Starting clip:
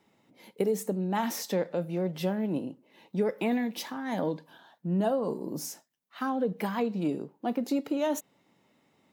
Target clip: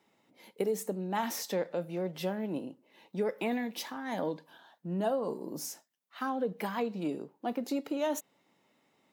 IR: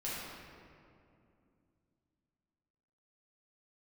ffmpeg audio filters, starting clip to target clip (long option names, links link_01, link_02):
-af "lowshelf=frequency=200:gain=-9.5,volume=-1.5dB"